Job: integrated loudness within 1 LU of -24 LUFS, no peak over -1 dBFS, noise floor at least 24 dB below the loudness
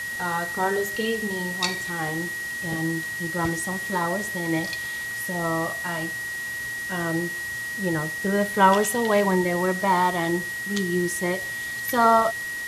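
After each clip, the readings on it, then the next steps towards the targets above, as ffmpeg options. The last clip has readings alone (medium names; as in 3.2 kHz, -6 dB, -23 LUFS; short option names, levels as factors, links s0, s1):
steady tone 1.9 kHz; tone level -29 dBFS; noise floor -32 dBFS; noise floor target -49 dBFS; loudness -24.5 LUFS; peak level -4.0 dBFS; loudness target -24.0 LUFS
-> -af "bandreject=f=1900:w=30"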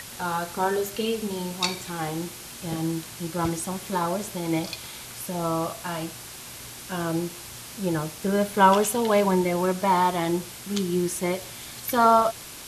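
steady tone not found; noise floor -41 dBFS; noise floor target -50 dBFS
-> -af "afftdn=nr=9:nf=-41"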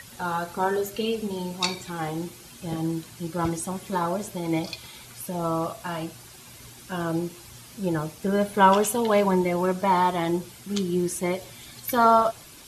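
noise floor -47 dBFS; noise floor target -50 dBFS
-> -af "afftdn=nr=6:nf=-47"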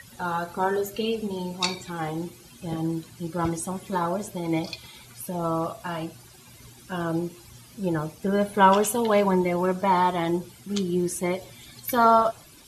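noise floor -50 dBFS; loudness -25.5 LUFS; peak level -4.5 dBFS; loudness target -24.0 LUFS
-> -af "volume=1.19"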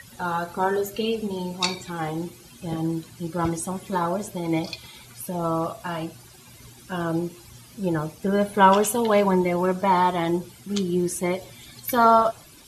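loudness -24.0 LUFS; peak level -3.0 dBFS; noise floor -49 dBFS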